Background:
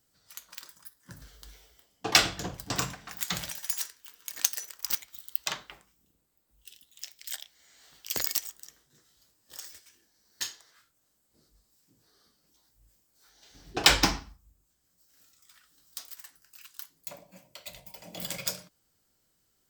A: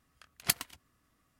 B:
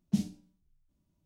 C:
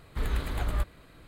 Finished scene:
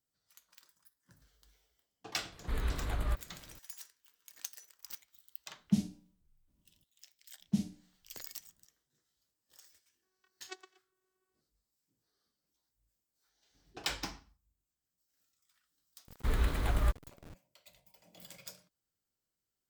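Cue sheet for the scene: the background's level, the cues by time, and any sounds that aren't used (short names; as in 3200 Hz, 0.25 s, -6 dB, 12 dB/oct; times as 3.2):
background -16.5 dB
2.32 add C -4.5 dB
5.59 add B -0.5 dB
7.4 add B -3 dB
10.02 add A -14.5 dB + vocoder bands 16, saw 374 Hz
16.08 add C -0.5 dB + level-crossing sampler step -45 dBFS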